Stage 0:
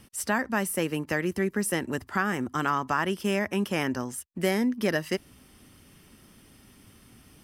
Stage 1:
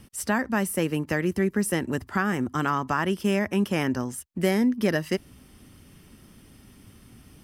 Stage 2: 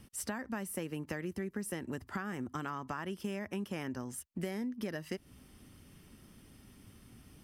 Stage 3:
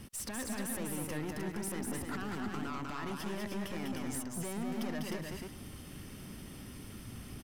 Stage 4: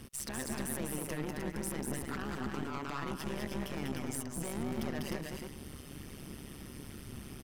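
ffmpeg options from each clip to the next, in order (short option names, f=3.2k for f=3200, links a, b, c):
-af "lowshelf=f=310:g=6"
-af "acompressor=threshold=-29dB:ratio=6,volume=-6dB"
-filter_complex "[0:a]alimiter=level_in=10dB:limit=-24dB:level=0:latency=1:release=22,volume=-10dB,aeval=exprs='(tanh(178*val(0)+0.2)-tanh(0.2))/178':c=same,asplit=2[a][b];[b]aecho=0:1:198|306|409:0.668|0.562|0.141[c];[a][c]amix=inputs=2:normalize=0,volume=8.5dB"
-af "tremolo=f=140:d=0.889,volume=4dB"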